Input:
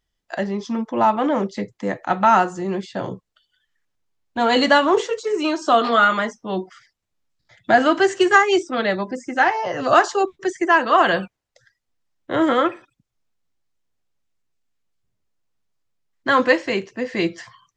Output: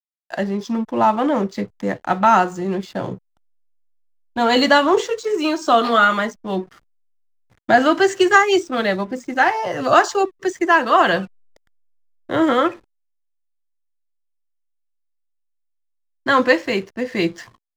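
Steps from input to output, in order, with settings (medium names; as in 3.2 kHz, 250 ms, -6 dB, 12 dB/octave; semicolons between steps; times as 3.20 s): tone controls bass +2 dB, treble +3 dB; hysteresis with a dead band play -39 dBFS; trim +1 dB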